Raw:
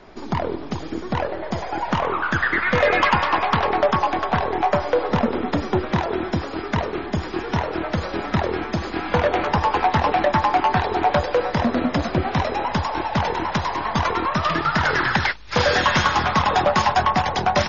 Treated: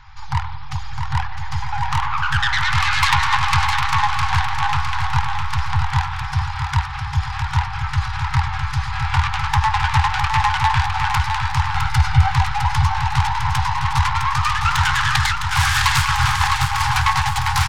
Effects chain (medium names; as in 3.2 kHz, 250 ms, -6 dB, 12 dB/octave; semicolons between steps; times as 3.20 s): self-modulated delay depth 0.19 ms; 11.75–12.33 s: comb 1.4 ms, depth 93%; 16.05–16.93 s: compressor with a negative ratio -21 dBFS, ratio -0.5; on a send: feedback delay 658 ms, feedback 51%, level -6 dB; on the sum: FFT band-reject 150–760 Hz; bass shelf 200 Hz +7.5 dB; trim +2 dB